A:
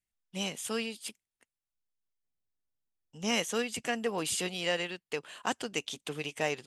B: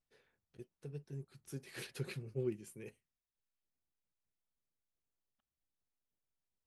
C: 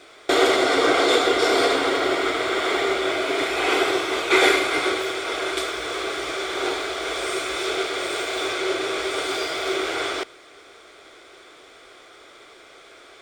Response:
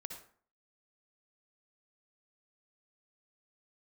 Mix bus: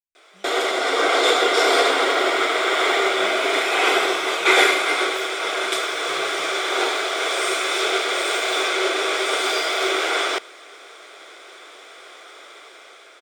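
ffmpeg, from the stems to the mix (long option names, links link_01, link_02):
-filter_complex "[0:a]acompressor=threshold=-34dB:ratio=6,volume=-17dB[link_01];[1:a]highpass=frequency=1100:poles=1,adelay=400,volume=-16dB[link_02];[2:a]highpass=460,bandreject=frequency=4400:width=18,adelay=150,volume=-3.5dB[link_03];[link_01][link_02][link_03]amix=inputs=3:normalize=0,dynaudnorm=framelen=400:gausssize=5:maxgain=9dB"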